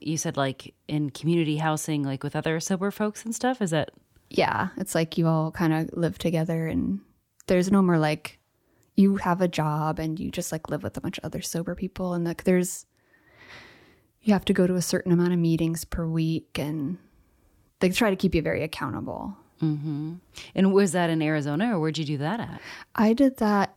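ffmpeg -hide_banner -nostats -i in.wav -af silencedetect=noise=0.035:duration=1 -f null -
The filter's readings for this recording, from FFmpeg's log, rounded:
silence_start: 12.78
silence_end: 14.27 | silence_duration: 1.49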